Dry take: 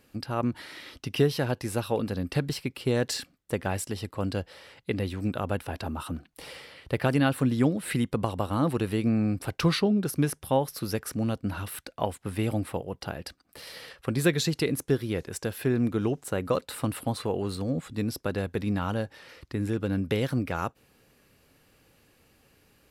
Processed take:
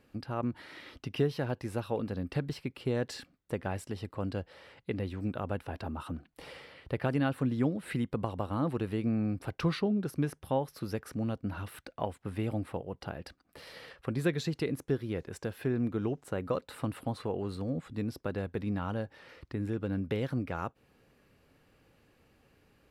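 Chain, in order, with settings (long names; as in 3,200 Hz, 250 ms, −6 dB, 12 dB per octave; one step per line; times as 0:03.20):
in parallel at −3 dB: downward compressor, threshold −37 dBFS, peak gain reduction 18 dB
on the sum: high-shelf EQ 4,100 Hz −12 dB
level −6.5 dB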